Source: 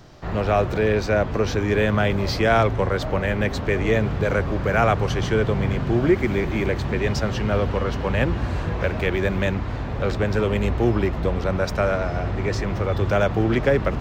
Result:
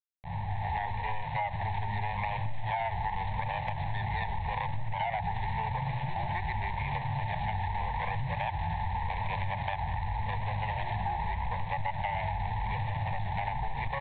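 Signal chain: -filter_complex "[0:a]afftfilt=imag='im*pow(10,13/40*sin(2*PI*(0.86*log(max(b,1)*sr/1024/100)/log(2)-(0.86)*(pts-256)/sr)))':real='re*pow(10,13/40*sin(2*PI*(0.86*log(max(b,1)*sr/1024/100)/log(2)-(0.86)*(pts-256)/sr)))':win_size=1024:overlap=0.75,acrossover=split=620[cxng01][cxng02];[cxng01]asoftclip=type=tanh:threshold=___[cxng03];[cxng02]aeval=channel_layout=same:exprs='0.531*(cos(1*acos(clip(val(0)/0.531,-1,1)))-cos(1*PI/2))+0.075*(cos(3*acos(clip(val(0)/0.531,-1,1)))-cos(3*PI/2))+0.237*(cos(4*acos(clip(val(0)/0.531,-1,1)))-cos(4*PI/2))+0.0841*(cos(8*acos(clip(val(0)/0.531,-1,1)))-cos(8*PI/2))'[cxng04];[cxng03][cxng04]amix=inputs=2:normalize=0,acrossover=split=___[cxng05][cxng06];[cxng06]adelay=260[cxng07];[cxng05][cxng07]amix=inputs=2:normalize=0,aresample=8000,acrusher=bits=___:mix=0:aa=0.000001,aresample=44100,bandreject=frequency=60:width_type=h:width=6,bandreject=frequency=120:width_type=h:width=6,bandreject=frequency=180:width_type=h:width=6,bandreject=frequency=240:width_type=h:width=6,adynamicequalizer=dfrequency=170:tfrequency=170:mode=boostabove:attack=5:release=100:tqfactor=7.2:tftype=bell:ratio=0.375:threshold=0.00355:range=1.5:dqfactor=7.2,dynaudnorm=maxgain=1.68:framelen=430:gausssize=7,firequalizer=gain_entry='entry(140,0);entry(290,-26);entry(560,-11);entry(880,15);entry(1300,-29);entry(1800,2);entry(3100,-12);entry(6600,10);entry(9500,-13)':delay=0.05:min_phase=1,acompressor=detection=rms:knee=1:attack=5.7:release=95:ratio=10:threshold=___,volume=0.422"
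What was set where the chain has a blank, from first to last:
0.126, 290, 4, 0.1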